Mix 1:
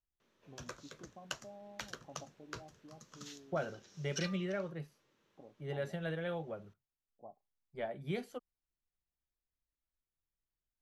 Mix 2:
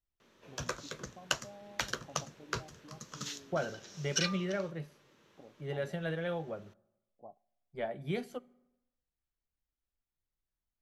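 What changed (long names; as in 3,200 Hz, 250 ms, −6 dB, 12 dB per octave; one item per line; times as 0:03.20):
background +9.0 dB
reverb: on, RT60 0.95 s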